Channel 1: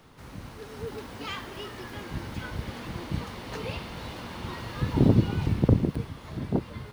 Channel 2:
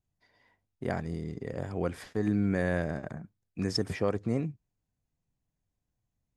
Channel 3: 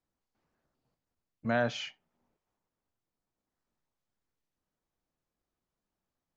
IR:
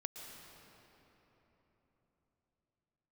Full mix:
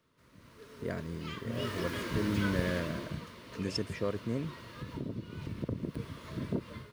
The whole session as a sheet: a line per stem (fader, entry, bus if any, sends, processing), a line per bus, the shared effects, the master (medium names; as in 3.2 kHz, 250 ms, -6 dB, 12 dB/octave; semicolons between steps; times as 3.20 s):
1.45 s -17 dB -> 1.69 s -5.5 dB -> 2.67 s -5.5 dB -> 3.34 s -18 dB -> 5.33 s -18 dB -> 6.13 s -10 dB, 0.00 s, no send, bass shelf 68 Hz -12 dB; compression 3:1, threshold -28 dBFS, peak gain reduction 9 dB
-13.0 dB, 0.00 s, no send, none
-11.5 dB, 0.00 s, no send, band-pass filter 130 Hz, Q 1.2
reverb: none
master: level rider gain up to 8.5 dB; Butterworth band-stop 790 Hz, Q 3.5